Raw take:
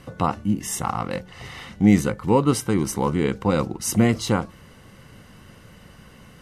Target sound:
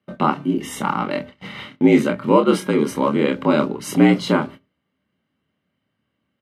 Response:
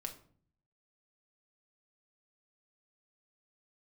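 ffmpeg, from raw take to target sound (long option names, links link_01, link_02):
-filter_complex "[0:a]afreqshift=66,highshelf=frequency=4600:width_type=q:width=1.5:gain=-8.5,asplit=2[link_01][link_02];[link_02]adelay=27,volume=-5.5dB[link_03];[link_01][link_03]amix=inputs=2:normalize=0,agate=range=-31dB:threshold=-36dB:ratio=16:detection=peak,asplit=2[link_04][link_05];[1:a]atrim=start_sample=2205,atrim=end_sample=6615,asetrate=42336,aresample=44100[link_06];[link_05][link_06]afir=irnorm=-1:irlink=0,volume=-11dB[link_07];[link_04][link_07]amix=inputs=2:normalize=0,volume=1dB"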